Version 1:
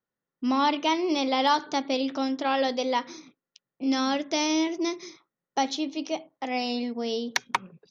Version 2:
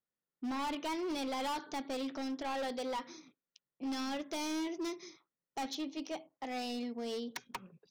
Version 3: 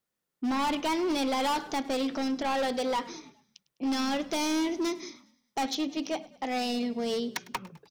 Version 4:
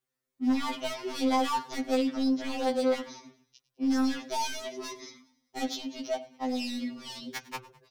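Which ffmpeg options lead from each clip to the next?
-af "asoftclip=type=hard:threshold=-25.5dB,volume=-8.5dB"
-filter_complex "[0:a]asplit=5[a][b][c][d][e];[b]adelay=103,afreqshift=-30,volume=-20dB[f];[c]adelay=206,afreqshift=-60,volume=-25.7dB[g];[d]adelay=309,afreqshift=-90,volume=-31.4dB[h];[e]adelay=412,afreqshift=-120,volume=-37dB[i];[a][f][g][h][i]amix=inputs=5:normalize=0,volume=8.5dB"
-af "afftfilt=real='re*2.45*eq(mod(b,6),0)':imag='im*2.45*eq(mod(b,6),0)':win_size=2048:overlap=0.75"

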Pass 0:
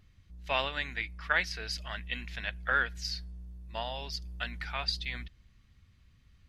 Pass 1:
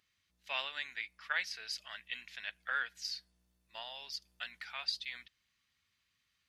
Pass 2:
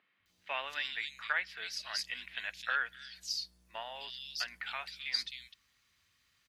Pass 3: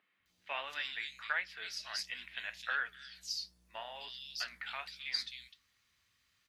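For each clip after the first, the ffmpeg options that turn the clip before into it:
-af "lowpass=f=2.1k:p=1,aderivative,volume=8dB"
-filter_complex "[0:a]asplit=2[a][b];[b]acompressor=threshold=-45dB:ratio=6,volume=2dB[c];[a][c]amix=inputs=2:normalize=0,acrossover=split=170|2900[d][e][f];[d]adelay=200[g];[f]adelay=260[h];[g][e][h]amix=inputs=3:normalize=0,volume=1dB"
-af "flanger=delay=9.5:depth=8.8:regen=-62:speed=1.4:shape=triangular,volume=2dB"

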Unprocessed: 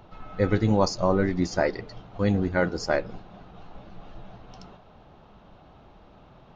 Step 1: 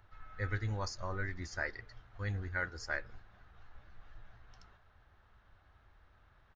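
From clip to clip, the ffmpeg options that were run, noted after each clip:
-af "firequalizer=gain_entry='entry(100,0);entry(150,-17);entry(360,-13);entry(720,-12);entry(1700,6);entry(2600,-6);entry(8700,-1)':delay=0.05:min_phase=1,volume=-8dB"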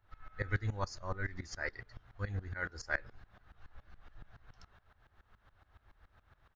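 -af "aeval=exprs='val(0)*pow(10,-19*if(lt(mod(-7.1*n/s,1),2*abs(-7.1)/1000),1-mod(-7.1*n/s,1)/(2*abs(-7.1)/1000),(mod(-7.1*n/s,1)-2*abs(-7.1)/1000)/(1-2*abs(-7.1)/1000))/20)':c=same,volume=5.5dB"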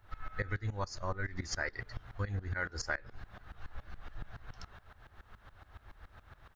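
-af "acompressor=threshold=-41dB:ratio=16,volume=9.5dB"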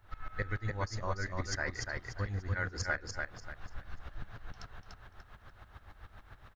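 -af "aecho=1:1:293|586|879|1172:0.631|0.189|0.0568|0.017"

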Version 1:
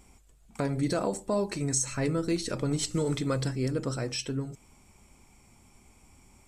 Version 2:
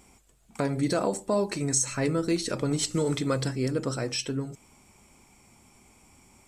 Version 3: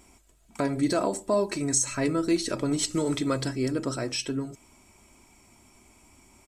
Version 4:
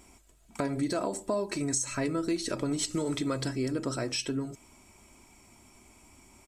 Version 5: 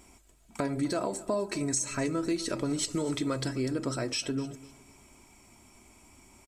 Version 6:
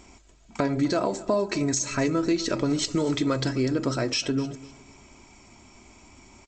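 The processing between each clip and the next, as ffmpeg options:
-af "lowshelf=f=77:g=-11.5,volume=3dB"
-af "aecho=1:1:3.1:0.39"
-af "acompressor=threshold=-28dB:ratio=3"
-af "aecho=1:1:252|504|756:0.112|0.0348|0.0108"
-af "volume=6dB" -ar 16000 -c:a g722

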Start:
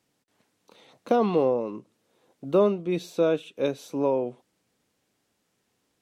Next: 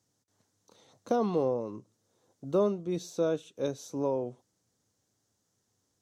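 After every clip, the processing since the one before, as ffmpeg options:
-af "equalizer=f=100:t=o:w=0.67:g=12,equalizer=f=2.5k:t=o:w=0.67:g=-9,equalizer=f=6.3k:t=o:w=0.67:g=10,volume=-6dB"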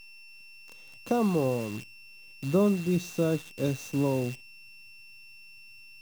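-af "aeval=exprs='val(0)+0.00562*sin(2*PI*2700*n/s)':c=same,asubboost=boost=5:cutoff=240,acrusher=bits=8:dc=4:mix=0:aa=0.000001,volume=1.5dB"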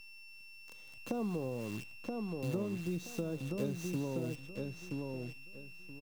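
-filter_complex "[0:a]acrossover=split=550[a][b];[b]alimiter=level_in=6dB:limit=-24dB:level=0:latency=1:release=232,volume=-6dB[c];[a][c]amix=inputs=2:normalize=0,acompressor=threshold=-30dB:ratio=6,asplit=2[d][e];[e]adelay=976,lowpass=f=3.8k:p=1,volume=-3dB,asplit=2[f][g];[g]adelay=976,lowpass=f=3.8k:p=1,volume=0.23,asplit=2[h][i];[i]adelay=976,lowpass=f=3.8k:p=1,volume=0.23[j];[d][f][h][j]amix=inputs=4:normalize=0,volume=-3.5dB"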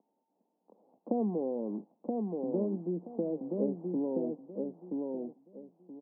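-af "asuperpass=centerf=410:order=12:qfactor=0.6,volume=6dB"

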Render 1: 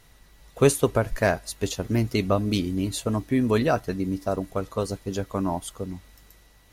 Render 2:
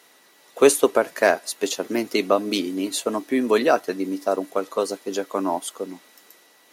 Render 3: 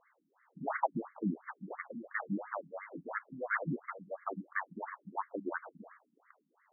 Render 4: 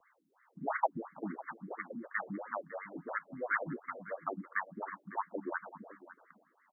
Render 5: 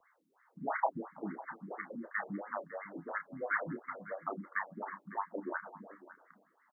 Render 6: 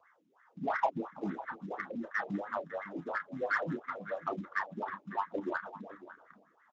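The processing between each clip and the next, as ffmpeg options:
-af "highpass=f=280:w=0.5412,highpass=f=280:w=1.3066,volume=5dB"
-af "tiltshelf=f=830:g=-3.5,aeval=exprs='abs(val(0))':c=same,afftfilt=real='re*between(b*sr/1024,210*pow(1600/210,0.5+0.5*sin(2*PI*2.9*pts/sr))/1.41,210*pow(1600/210,0.5+0.5*sin(2*PI*2.9*pts/sr))*1.41)':imag='im*between(b*sr/1024,210*pow(1600/210,0.5+0.5*sin(2*PI*2.9*pts/sr))/1.41,210*pow(1600/210,0.5+0.5*sin(2*PI*2.9*pts/sr))*1.41)':win_size=1024:overlap=0.75,volume=-2dB"
-filter_complex "[0:a]acrossover=split=150|380|1100[a][b][c][d];[a]acompressor=threshold=-57dB:ratio=6[e];[b]alimiter=level_in=14dB:limit=-24dB:level=0:latency=1:release=410,volume=-14dB[f];[e][f][c][d]amix=inputs=4:normalize=0,aecho=1:1:553:0.15,volume=1dB"
-filter_complex "[0:a]asplit=2[a][b];[b]adelay=30,volume=-8.5dB[c];[a][c]amix=inputs=2:normalize=0,volume=-1dB"
-filter_complex "[0:a]asplit=2[a][b];[b]asoftclip=type=tanh:threshold=-34dB,volume=-3.5dB[c];[a][c]amix=inputs=2:normalize=0" -ar 16000 -c:a libspeex -b:a 17k

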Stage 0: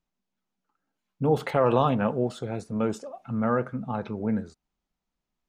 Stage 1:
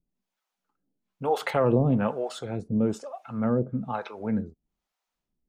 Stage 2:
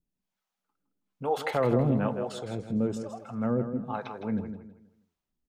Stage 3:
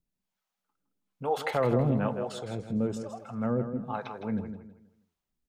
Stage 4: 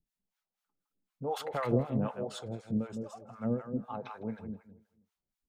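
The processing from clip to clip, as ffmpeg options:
-filter_complex "[0:a]acrossover=split=500[a][b];[a]aeval=exprs='val(0)*(1-1/2+1/2*cos(2*PI*1.1*n/s))':c=same[c];[b]aeval=exprs='val(0)*(1-1/2-1/2*cos(2*PI*1.1*n/s))':c=same[d];[c][d]amix=inputs=2:normalize=0,volume=5dB"
-af "aecho=1:1:161|322|483|644:0.355|0.114|0.0363|0.0116,volume=-3dB"
-af "equalizer=f=300:w=1.5:g=-2.5"
-filter_complex "[0:a]acrossover=split=710[a][b];[a]aeval=exprs='val(0)*(1-1/2+1/2*cos(2*PI*4*n/s))':c=same[c];[b]aeval=exprs='val(0)*(1-1/2-1/2*cos(2*PI*4*n/s))':c=same[d];[c][d]amix=inputs=2:normalize=0"

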